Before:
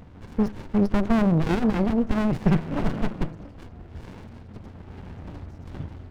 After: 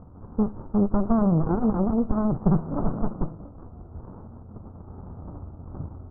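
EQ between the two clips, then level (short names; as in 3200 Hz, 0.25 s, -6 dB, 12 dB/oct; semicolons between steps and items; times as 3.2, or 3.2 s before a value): Chebyshev low-pass 1300 Hz, order 5; 0.0 dB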